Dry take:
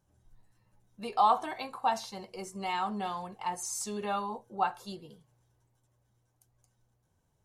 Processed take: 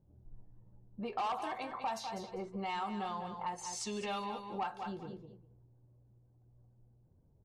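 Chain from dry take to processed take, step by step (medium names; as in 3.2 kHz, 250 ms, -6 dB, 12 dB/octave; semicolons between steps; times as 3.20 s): saturation -24 dBFS, distortion -11 dB; level-controlled noise filter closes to 420 Hz, open at -29 dBFS; 3.58–4.45 s: resonant high shelf 1.9 kHz +6 dB, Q 1.5; feedback delay 199 ms, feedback 16%, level -11 dB; compression 2.5:1, threshold -49 dBFS, peak gain reduction 14.5 dB; trim +7.5 dB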